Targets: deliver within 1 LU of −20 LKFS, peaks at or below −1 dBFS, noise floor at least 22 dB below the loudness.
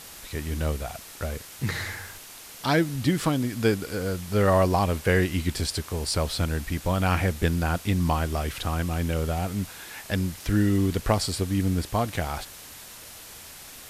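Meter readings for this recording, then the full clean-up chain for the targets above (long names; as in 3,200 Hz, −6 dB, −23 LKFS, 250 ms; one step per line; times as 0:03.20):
background noise floor −44 dBFS; target noise floor −49 dBFS; integrated loudness −26.5 LKFS; sample peak −8.5 dBFS; target loudness −20.0 LKFS
→ noise reduction from a noise print 6 dB
level +6.5 dB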